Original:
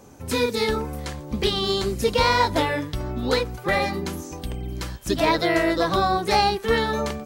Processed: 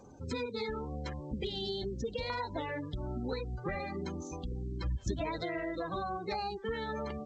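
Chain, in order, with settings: spectral gate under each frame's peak -20 dB strong; 1.39–2.30 s: Butterworth band-stop 1.2 kHz, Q 1.1; 3.32–3.81 s: bass shelf 190 Hz +9 dB; compression 10:1, threshold -27 dBFS, peak gain reduction 12.5 dB; 4.84–5.45 s: peaking EQ 78 Hz +12 dB 1.1 oct; trim -6 dB; G.722 64 kbps 16 kHz

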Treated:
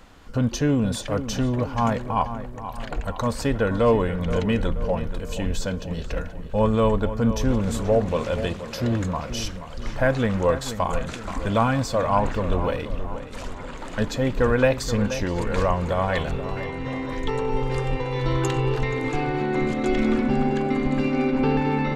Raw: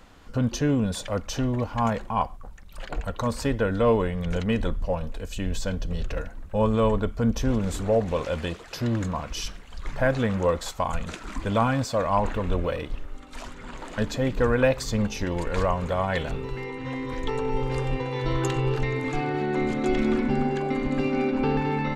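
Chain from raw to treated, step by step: 5.66–6.08 s: high-pass 86 Hz; filtered feedback delay 478 ms, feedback 52%, low-pass 2.7 kHz, level -11 dB; trim +2 dB

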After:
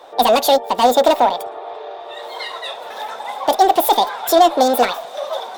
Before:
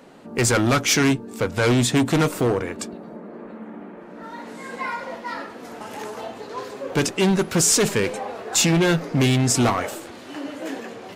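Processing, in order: peaking EQ 90 Hz -3.5 dB 0.32 oct; small resonant body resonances 350/1800 Hz, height 15 dB, ringing for 20 ms; speed mistake 7.5 ips tape played at 15 ips; trim -3 dB

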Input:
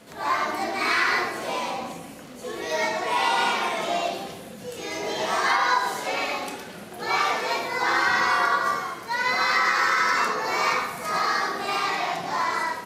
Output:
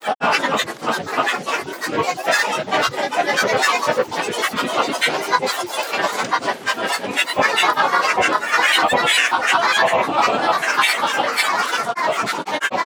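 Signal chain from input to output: high-pass 180 Hz 12 dB/octave; granulator, grains 20 per s, spray 976 ms, pitch spread up and down by 12 st; trim +7.5 dB

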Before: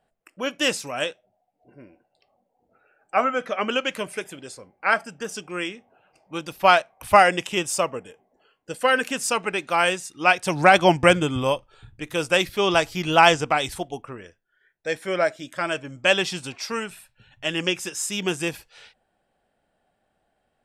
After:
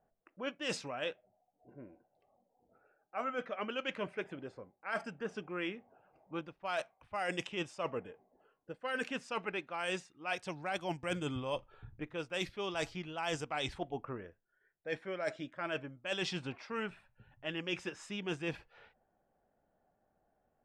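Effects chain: level-controlled noise filter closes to 1.2 kHz, open at -13.5 dBFS; reverse; compression 16:1, threshold -29 dBFS, peak gain reduction 21.5 dB; reverse; trim -4.5 dB

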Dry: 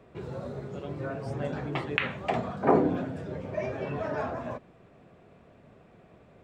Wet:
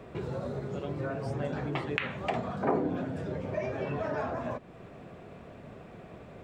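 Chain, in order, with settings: compression 2:1, threshold -45 dBFS, peak gain reduction 15 dB; trim +8 dB

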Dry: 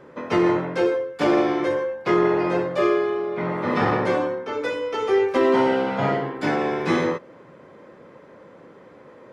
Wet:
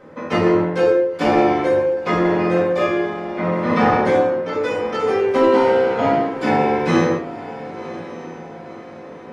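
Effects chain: echo that smears into a reverb 1034 ms, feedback 49%, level -14.5 dB; simulated room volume 290 m³, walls furnished, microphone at 2 m

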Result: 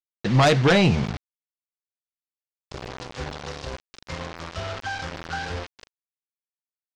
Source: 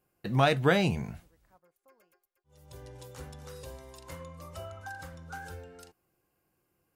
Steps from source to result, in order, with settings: 3.51–4.69 s: dynamic bell 600 Hz, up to -4 dB, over -56 dBFS, Q 0.78; bit crusher 7-bit; low-pass 5.6 kHz 24 dB/octave; sine folder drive 7 dB, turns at -12 dBFS

